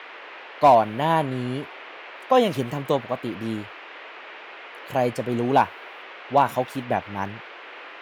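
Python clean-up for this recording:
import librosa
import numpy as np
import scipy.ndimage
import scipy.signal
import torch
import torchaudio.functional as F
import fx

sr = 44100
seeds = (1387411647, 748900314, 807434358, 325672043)

y = fx.fix_declip(x, sr, threshold_db=-7.5)
y = fx.noise_reduce(y, sr, print_start_s=3.73, print_end_s=4.23, reduce_db=27.0)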